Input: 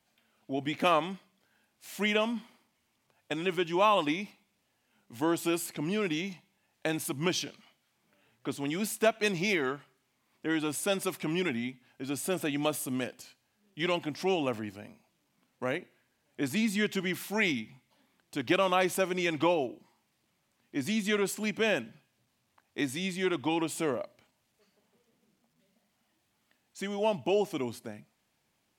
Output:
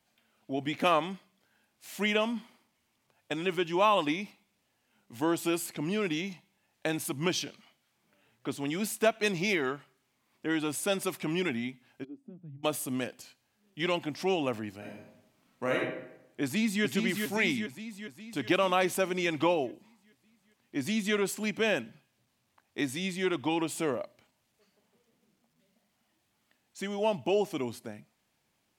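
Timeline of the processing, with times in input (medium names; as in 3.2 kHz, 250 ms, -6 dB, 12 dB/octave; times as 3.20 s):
12.03–12.63 s: band-pass filter 400 Hz -> 110 Hz, Q 11
14.77–15.79 s: reverb throw, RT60 0.83 s, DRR -2.5 dB
16.43–16.84 s: echo throw 410 ms, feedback 60%, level -4.5 dB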